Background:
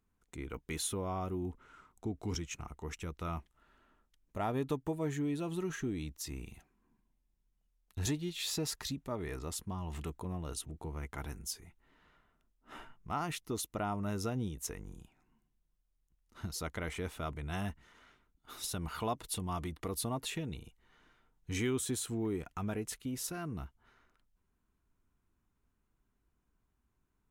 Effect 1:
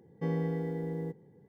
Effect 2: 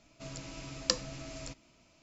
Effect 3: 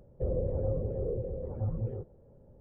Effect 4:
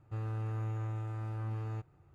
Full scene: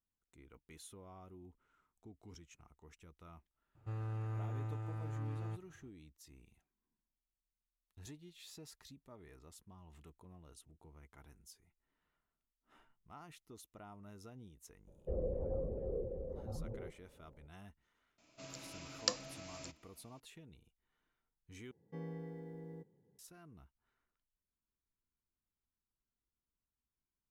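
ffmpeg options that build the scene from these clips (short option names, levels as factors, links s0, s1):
-filter_complex "[0:a]volume=0.126[s0];[3:a]equalizer=f=110:t=o:w=0.77:g=-10.5[s1];[2:a]highpass=f=250:p=1[s2];[s0]asplit=2[s3][s4];[s3]atrim=end=21.714[s5];[1:a]atrim=end=1.48,asetpts=PTS-STARTPTS,volume=0.2[s6];[s4]atrim=start=23.186[s7];[4:a]atrim=end=2.14,asetpts=PTS-STARTPTS,volume=0.631,afade=t=in:d=0.004:c=hsin,afade=t=out:st=2.136:d=0.004:c=hsin,adelay=3750[s8];[s1]atrim=end=2.6,asetpts=PTS-STARTPTS,volume=0.531,afade=t=in:d=0.004:c=hsin,afade=t=out:st=2.596:d=0.004:c=hsin,adelay=14870[s9];[s2]atrim=end=2.02,asetpts=PTS-STARTPTS,volume=0.596,afade=t=in:d=0.004:c=hsin,afade=t=out:st=2.016:d=0.004:c=hsin,adelay=18180[s10];[s5][s6]acrossfade=d=0.004:c1=hsin:c2=hsin[s11];[s11][s7]acrossfade=d=0.004:c1=hsin:c2=hsin[s12];[s12][s8][s9][s10]amix=inputs=4:normalize=0"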